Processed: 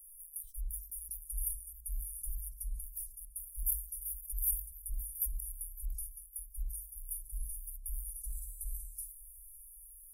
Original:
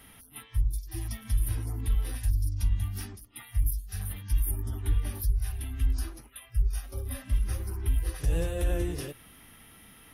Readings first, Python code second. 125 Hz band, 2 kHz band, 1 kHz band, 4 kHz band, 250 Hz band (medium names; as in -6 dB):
under -15 dB, under -40 dB, under -40 dB, under -30 dB, under -35 dB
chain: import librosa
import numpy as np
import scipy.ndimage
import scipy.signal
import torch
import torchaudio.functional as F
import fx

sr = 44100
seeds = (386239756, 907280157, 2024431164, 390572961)

p1 = scipy.signal.sosfilt(scipy.signal.cheby2(4, 70, [110.0, 2800.0], 'bandstop', fs=sr, output='sos'), x)
p2 = fx.small_body(p1, sr, hz=(210.0, 420.0), ring_ms=20, db=11)
p3 = p2 + fx.echo_feedback(p2, sr, ms=557, feedback_pct=56, wet_db=-18.5, dry=0)
p4 = fx.sustainer(p3, sr, db_per_s=110.0)
y = F.gain(torch.from_numpy(p4), 5.0).numpy()